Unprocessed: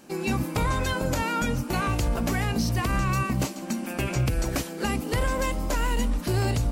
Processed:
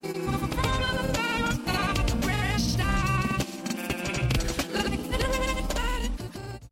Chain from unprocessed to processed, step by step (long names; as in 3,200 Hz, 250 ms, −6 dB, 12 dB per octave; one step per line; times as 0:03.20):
fade-out on the ending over 1.08 s
granular cloud, pitch spread up and down by 0 semitones
dynamic equaliser 3,400 Hz, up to +7 dB, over −49 dBFS, Q 1.2